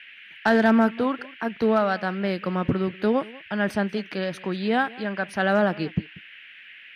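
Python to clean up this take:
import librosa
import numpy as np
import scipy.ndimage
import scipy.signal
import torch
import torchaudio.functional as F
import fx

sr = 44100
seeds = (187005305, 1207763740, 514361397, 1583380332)

y = fx.fix_declip(x, sr, threshold_db=-11.0)
y = fx.noise_reduce(y, sr, print_start_s=6.43, print_end_s=6.93, reduce_db=22.0)
y = fx.fix_echo_inverse(y, sr, delay_ms=189, level_db=-21.5)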